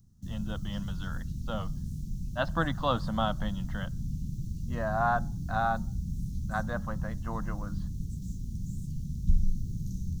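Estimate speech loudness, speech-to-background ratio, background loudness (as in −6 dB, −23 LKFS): −34.0 LKFS, 3.0 dB, −37.0 LKFS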